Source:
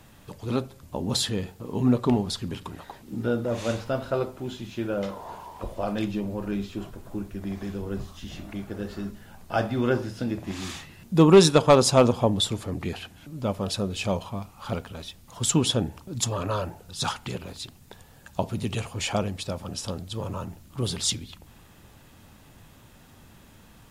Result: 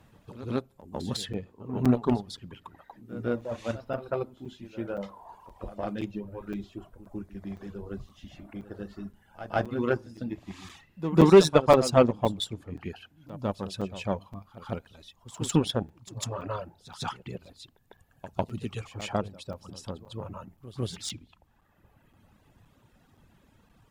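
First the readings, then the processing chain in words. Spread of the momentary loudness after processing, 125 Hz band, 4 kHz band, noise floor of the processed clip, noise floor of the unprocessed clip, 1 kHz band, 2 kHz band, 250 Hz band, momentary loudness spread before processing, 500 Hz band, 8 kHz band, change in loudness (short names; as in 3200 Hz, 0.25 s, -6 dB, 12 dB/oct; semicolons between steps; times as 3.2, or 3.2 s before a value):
22 LU, -4.5 dB, -7.5 dB, -64 dBFS, -53 dBFS, -2.5 dB, -4.0 dB, -3.0 dB, 17 LU, -2.0 dB, -10.0 dB, -2.0 dB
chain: added harmonics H 7 -24 dB, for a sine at -6.5 dBFS; high shelf 3300 Hz -9 dB; reverb removal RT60 1.6 s; pre-echo 0.151 s -14 dB; crackling interface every 0.52 s, samples 256, zero, from 0.81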